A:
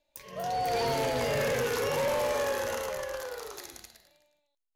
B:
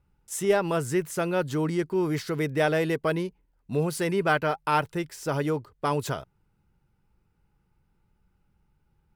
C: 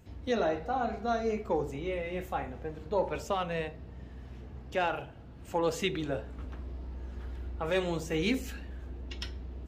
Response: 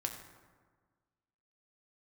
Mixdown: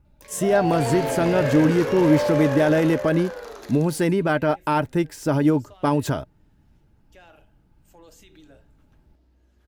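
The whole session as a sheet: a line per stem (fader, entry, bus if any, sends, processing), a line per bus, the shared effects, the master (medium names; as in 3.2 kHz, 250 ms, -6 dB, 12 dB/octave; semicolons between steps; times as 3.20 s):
+2.5 dB, 0.05 s, no send, treble shelf 5.4 kHz -12 dB
+2.5 dB, 0.00 s, no send, bass shelf 200 Hz +8.5 dB; peak limiter -17 dBFS, peak gain reduction 7 dB; small resonant body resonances 250/870 Hz, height 6 dB
-7.0 dB, 2.40 s, no send, pre-emphasis filter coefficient 0.8; peak limiter -35.5 dBFS, peak gain reduction 9.5 dB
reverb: none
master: small resonant body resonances 300/610/1600 Hz, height 7 dB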